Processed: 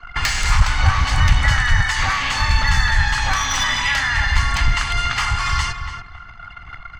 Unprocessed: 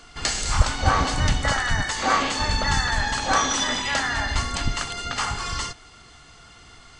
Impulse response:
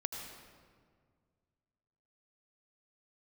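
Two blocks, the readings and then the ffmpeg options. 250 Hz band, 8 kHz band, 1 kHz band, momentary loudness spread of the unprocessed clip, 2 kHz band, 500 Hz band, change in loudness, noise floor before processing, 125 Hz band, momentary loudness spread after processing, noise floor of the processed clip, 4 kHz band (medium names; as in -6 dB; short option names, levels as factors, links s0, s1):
-3.0 dB, +0.5 dB, +2.0 dB, 7 LU, +7.0 dB, -7.0 dB, +5.0 dB, -49 dBFS, +7.5 dB, 14 LU, -39 dBFS, +3.5 dB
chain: -filter_complex "[0:a]anlmdn=0.0631,asplit=2[s0][s1];[s1]acompressor=threshold=0.0282:ratio=6,volume=1[s2];[s0][s2]amix=inputs=2:normalize=0,asoftclip=type=tanh:threshold=0.266,equalizer=f=250:t=o:w=1:g=-5,equalizer=f=500:t=o:w=1:g=-7,equalizer=f=1000:t=o:w=1:g=8,equalizer=f=2000:t=o:w=1:g=9,equalizer=f=4000:t=o:w=1:g=-5,equalizer=f=8000:t=o:w=1:g=-11,acrossover=split=150|3000[s3][s4][s5];[s4]acompressor=threshold=0.0251:ratio=6[s6];[s3][s6][s5]amix=inputs=3:normalize=0,asplit=2[s7][s8];[s8]adelay=284,lowpass=f=2300:p=1,volume=0.422,asplit=2[s9][s10];[s10]adelay=284,lowpass=f=2300:p=1,volume=0.2,asplit=2[s11][s12];[s12]adelay=284,lowpass=f=2300:p=1,volume=0.2[s13];[s7][s9][s11][s13]amix=inputs=4:normalize=0,volume=2.51"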